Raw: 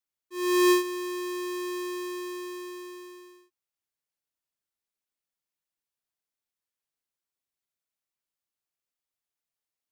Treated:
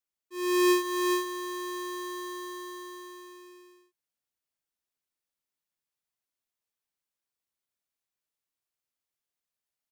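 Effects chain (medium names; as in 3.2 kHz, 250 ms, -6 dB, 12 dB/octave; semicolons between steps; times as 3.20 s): delay 420 ms -3.5 dB; trim -2 dB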